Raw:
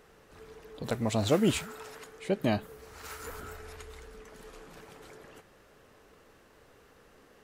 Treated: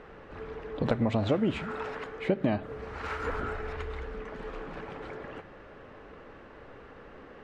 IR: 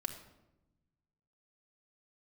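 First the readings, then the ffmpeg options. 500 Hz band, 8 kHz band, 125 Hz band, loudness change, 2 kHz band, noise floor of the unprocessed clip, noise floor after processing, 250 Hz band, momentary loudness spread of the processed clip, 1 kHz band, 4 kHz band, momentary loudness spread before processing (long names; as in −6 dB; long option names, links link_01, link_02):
+1.5 dB, below −15 dB, +2.0 dB, −1.5 dB, +3.5 dB, −60 dBFS, −50 dBFS, +1.5 dB, 22 LU, +3.5 dB, −5.0 dB, 24 LU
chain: -filter_complex "[0:a]lowpass=2400,acompressor=threshold=-33dB:ratio=12,asplit=2[link_01][link_02];[1:a]atrim=start_sample=2205,lowpass=4700[link_03];[link_02][link_03]afir=irnorm=-1:irlink=0,volume=-10dB[link_04];[link_01][link_04]amix=inputs=2:normalize=0,volume=8.5dB"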